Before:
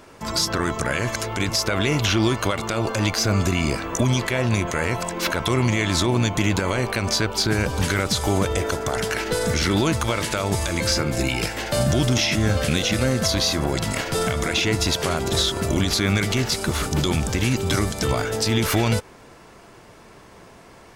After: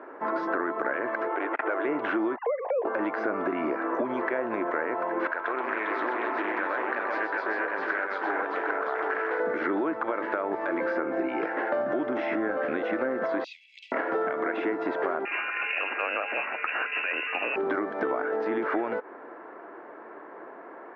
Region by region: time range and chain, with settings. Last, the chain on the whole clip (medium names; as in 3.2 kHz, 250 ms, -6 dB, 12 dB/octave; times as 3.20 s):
1.27–1.85 s: brick-wall FIR high-pass 290 Hz + careless resampling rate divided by 6×, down none, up filtered + transformer saturation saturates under 1.5 kHz
2.36–2.85 s: formants replaced by sine waves + static phaser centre 560 Hz, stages 4
5.27–9.40 s: high-pass 1.4 kHz 6 dB/octave + multi-tap echo 125/399/755 ms -5/-4.5/-5.5 dB + loudspeaker Doppler distortion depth 0.29 ms
13.44–13.92 s: steep high-pass 2.4 kHz 96 dB/octave + treble shelf 3.2 kHz +10.5 dB
15.25–17.56 s: tilt shelf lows +4.5 dB, about 1.1 kHz + frequency inversion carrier 2.8 kHz
whole clip: elliptic band-pass 300–1700 Hz, stop band 80 dB; compression, threshold -30 dBFS; trim +5 dB